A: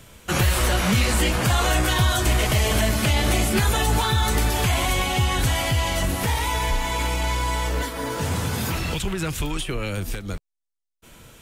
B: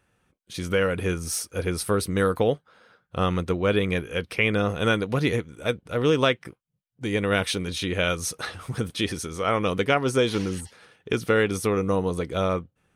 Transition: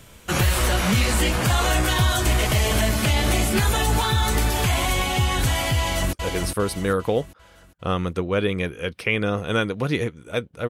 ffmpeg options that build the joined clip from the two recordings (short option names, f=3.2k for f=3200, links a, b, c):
-filter_complex "[0:a]apad=whole_dur=10.69,atrim=end=10.69,atrim=end=6.132[a];[1:a]atrim=start=1.448:end=6.01[b];[a][b]acrossfade=d=0.004:c1=hsin:c2=hsin,asplit=2[c][d];[d]afade=t=in:st=5.79:d=0.01,afade=t=out:st=6.13:d=0.01,aecho=0:1:400|800|1200|1600|2000:0.562341|0.224937|0.0899746|0.0359898|0.0143959[e];[c][e]amix=inputs=2:normalize=0"